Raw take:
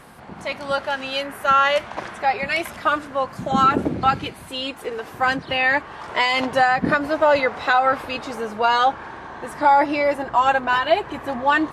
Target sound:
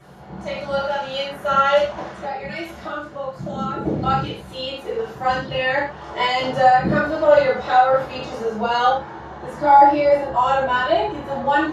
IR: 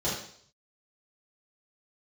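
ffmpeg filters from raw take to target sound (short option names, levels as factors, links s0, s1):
-filter_complex "[0:a]asplit=3[s0][s1][s2];[s0]afade=t=out:st=1.99:d=0.02[s3];[s1]acompressor=threshold=0.0316:ratio=2,afade=t=in:st=1.99:d=0.02,afade=t=out:st=3.83:d=0.02[s4];[s2]afade=t=in:st=3.83:d=0.02[s5];[s3][s4][s5]amix=inputs=3:normalize=0[s6];[1:a]atrim=start_sample=2205,atrim=end_sample=6174[s7];[s6][s7]afir=irnorm=-1:irlink=0,volume=0.299"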